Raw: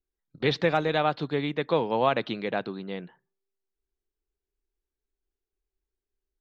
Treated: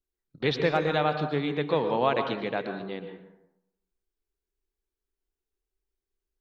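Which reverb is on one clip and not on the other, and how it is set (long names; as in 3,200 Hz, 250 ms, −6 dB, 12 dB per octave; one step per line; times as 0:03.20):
dense smooth reverb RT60 0.85 s, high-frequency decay 0.5×, pre-delay 105 ms, DRR 6.5 dB
level −1.5 dB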